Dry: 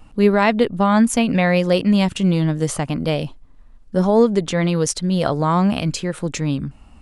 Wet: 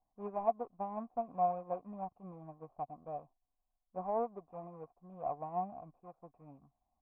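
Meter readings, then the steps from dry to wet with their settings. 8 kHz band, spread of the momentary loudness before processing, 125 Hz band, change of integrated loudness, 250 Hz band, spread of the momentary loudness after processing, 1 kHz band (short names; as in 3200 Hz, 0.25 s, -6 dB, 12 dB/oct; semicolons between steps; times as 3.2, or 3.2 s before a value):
under -40 dB, 9 LU, -32.5 dB, -21.0 dB, -31.5 dB, 20 LU, -14.0 dB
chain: median filter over 41 samples; vocal tract filter a; upward expander 1.5:1, over -56 dBFS; gain +1.5 dB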